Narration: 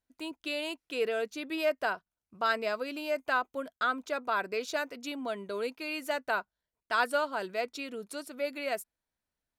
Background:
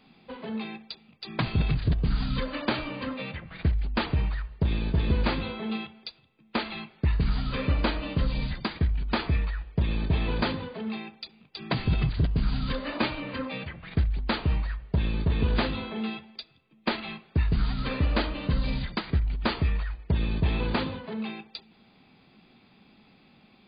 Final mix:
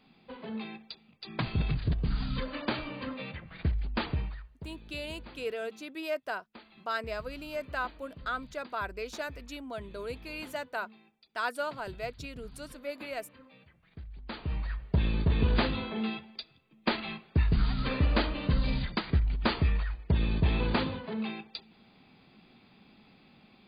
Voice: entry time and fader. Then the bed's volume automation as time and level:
4.45 s, -4.5 dB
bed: 4.11 s -4.5 dB
4.77 s -22.5 dB
13.94 s -22.5 dB
14.78 s -1 dB

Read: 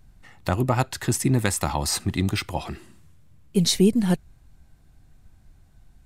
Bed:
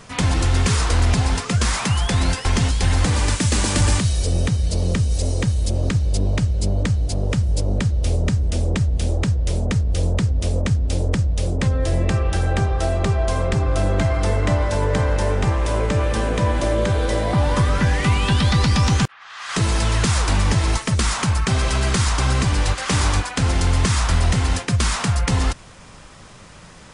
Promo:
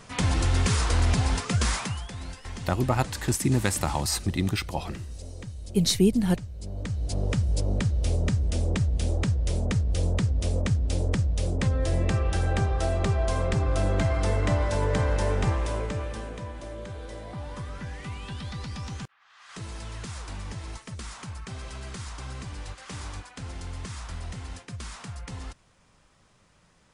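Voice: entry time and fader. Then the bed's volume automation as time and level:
2.20 s, -2.5 dB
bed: 1.73 s -5.5 dB
2.11 s -19 dB
6.55 s -19 dB
7.17 s -5.5 dB
15.49 s -5.5 dB
16.52 s -19 dB

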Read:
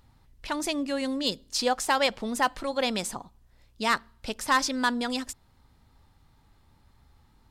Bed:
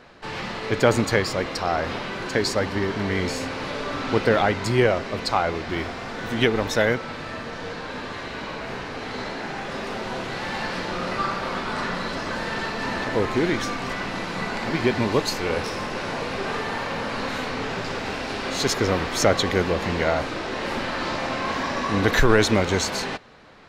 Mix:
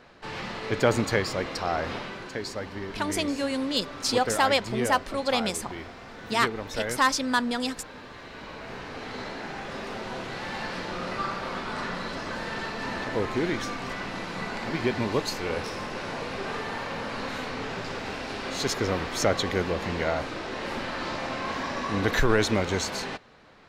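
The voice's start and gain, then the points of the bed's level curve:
2.50 s, +1.0 dB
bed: 1.97 s -4 dB
2.35 s -11 dB
8.13 s -11 dB
8.96 s -5 dB

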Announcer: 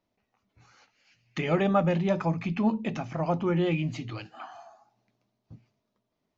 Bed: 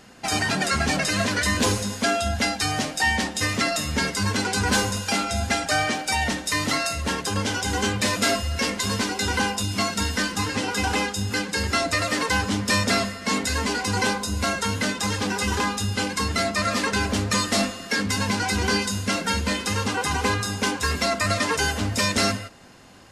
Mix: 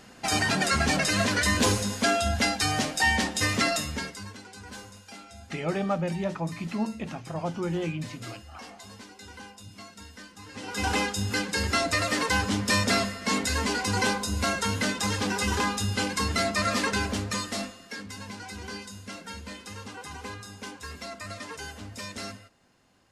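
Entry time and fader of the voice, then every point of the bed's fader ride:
4.15 s, -4.0 dB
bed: 3.73 s -1.5 dB
4.41 s -21.5 dB
10.41 s -21.5 dB
10.87 s -2.5 dB
16.85 s -2.5 dB
18.09 s -16 dB

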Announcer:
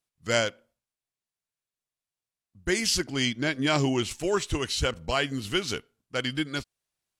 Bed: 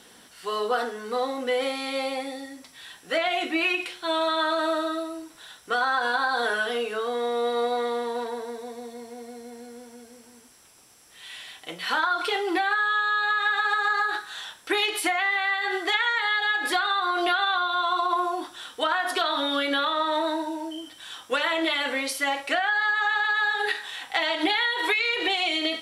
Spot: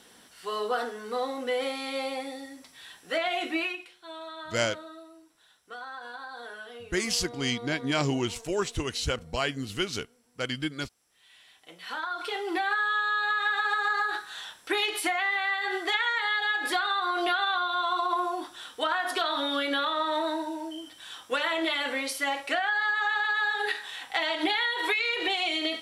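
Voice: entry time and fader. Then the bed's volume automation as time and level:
4.25 s, -2.5 dB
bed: 3.58 s -3.5 dB
3.87 s -16.5 dB
11.28 s -16.5 dB
12.7 s -3 dB

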